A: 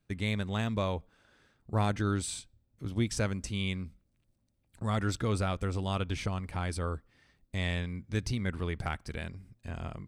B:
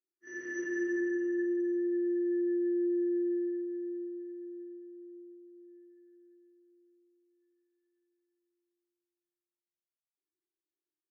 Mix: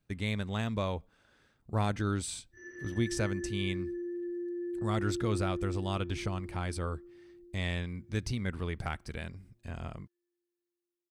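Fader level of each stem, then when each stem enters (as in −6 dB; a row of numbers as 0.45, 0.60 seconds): −1.5, −6.5 decibels; 0.00, 2.30 seconds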